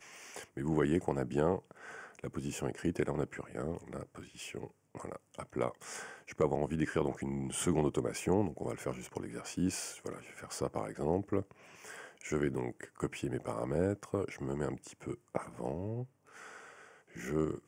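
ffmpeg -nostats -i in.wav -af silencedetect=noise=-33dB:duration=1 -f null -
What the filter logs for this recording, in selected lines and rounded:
silence_start: 16.02
silence_end: 17.25 | silence_duration: 1.23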